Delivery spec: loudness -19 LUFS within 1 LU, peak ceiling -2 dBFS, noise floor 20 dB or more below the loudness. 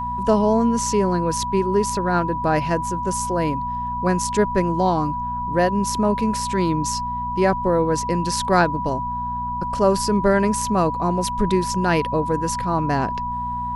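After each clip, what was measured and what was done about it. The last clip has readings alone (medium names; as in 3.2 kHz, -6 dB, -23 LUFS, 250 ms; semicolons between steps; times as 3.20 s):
hum 60 Hz; highest harmonic 240 Hz; hum level -30 dBFS; steady tone 980 Hz; tone level -24 dBFS; loudness -21.0 LUFS; peak level -4.0 dBFS; loudness target -19.0 LUFS
-> de-hum 60 Hz, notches 4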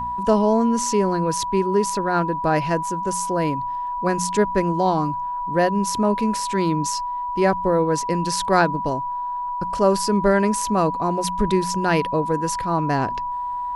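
hum not found; steady tone 980 Hz; tone level -24 dBFS
-> band-stop 980 Hz, Q 30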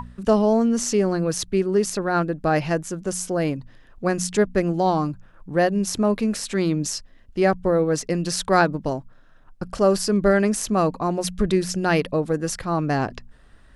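steady tone not found; loudness -22.5 LUFS; peak level -4.0 dBFS; loudness target -19.0 LUFS
-> trim +3.5 dB; peak limiter -2 dBFS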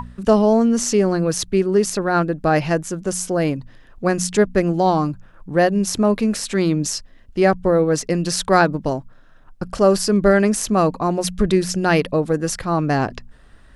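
loudness -19.0 LUFS; peak level -2.0 dBFS; noise floor -47 dBFS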